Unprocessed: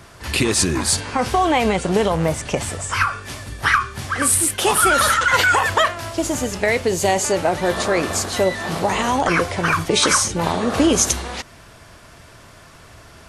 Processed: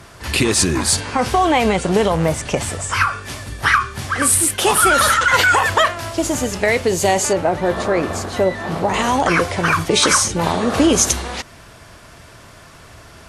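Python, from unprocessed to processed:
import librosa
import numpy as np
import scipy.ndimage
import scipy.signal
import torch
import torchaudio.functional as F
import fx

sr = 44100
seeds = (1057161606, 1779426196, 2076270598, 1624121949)

y = fx.high_shelf(x, sr, hz=2500.0, db=-11.0, at=(7.33, 8.94))
y = fx.cheby_harmonics(y, sr, harmonics=(5,), levels_db=(-34,), full_scale_db=-2.5)
y = y * librosa.db_to_amplitude(1.5)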